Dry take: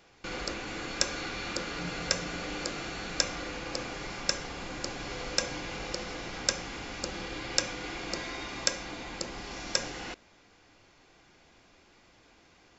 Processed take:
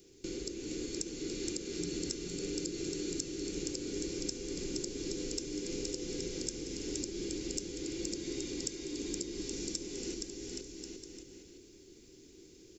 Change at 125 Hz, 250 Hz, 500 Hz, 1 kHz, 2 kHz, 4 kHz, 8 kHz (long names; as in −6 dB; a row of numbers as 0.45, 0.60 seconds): −3.5 dB, +3.5 dB, −0.5 dB, −23.0 dB, −15.5 dB, −7.5 dB, can't be measured